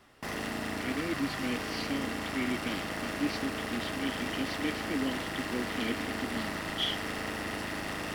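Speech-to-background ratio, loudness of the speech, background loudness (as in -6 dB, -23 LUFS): -1.0 dB, -36.5 LUFS, -35.5 LUFS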